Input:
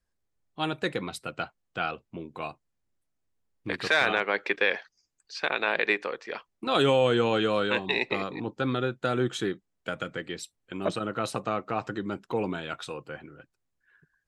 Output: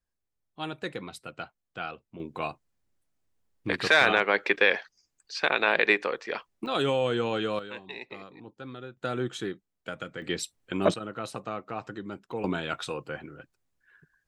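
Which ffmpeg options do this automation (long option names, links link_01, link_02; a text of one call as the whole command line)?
ffmpeg -i in.wav -af "asetnsamples=nb_out_samples=441:pad=0,asendcmd='2.2 volume volume 3dB;6.66 volume volume -4dB;7.59 volume volume -13.5dB;8.97 volume volume -4dB;10.22 volume volume 5.5dB;10.94 volume volume -5.5dB;12.44 volume volume 3dB',volume=-5.5dB" out.wav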